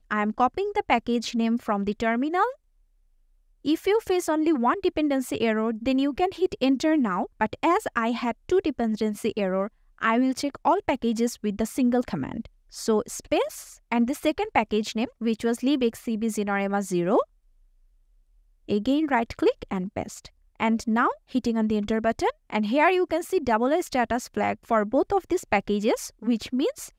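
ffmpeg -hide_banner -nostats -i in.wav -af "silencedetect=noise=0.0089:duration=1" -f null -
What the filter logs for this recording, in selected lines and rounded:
silence_start: 2.53
silence_end: 3.65 | silence_duration: 1.11
silence_start: 17.24
silence_end: 18.68 | silence_duration: 1.44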